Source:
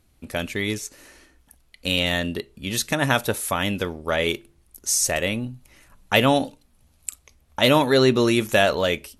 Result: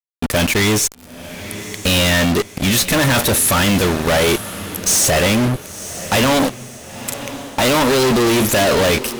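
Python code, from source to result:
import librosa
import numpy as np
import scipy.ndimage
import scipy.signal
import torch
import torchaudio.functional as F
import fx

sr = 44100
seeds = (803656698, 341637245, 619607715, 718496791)

y = fx.fuzz(x, sr, gain_db=44.0, gate_db=-40.0)
y = fx.echo_diffused(y, sr, ms=982, feedback_pct=41, wet_db=-13.5)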